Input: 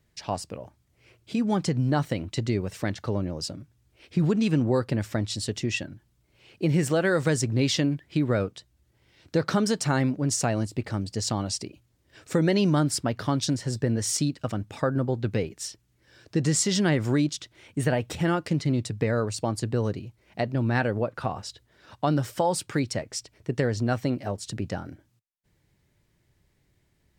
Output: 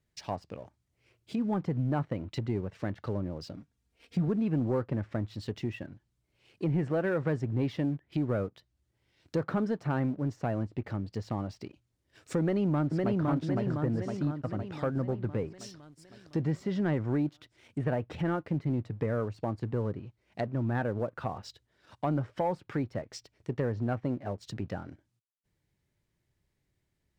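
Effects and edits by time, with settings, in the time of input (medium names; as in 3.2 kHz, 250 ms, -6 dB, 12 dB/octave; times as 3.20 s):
3.56–4.28 s: comb 4.3 ms, depth 58%
12.40–13.24 s: echo throw 510 ms, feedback 60%, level -2 dB
whole clip: low-pass that closes with the level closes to 1.5 kHz, closed at -24.5 dBFS; waveshaping leveller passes 1; trim -8.5 dB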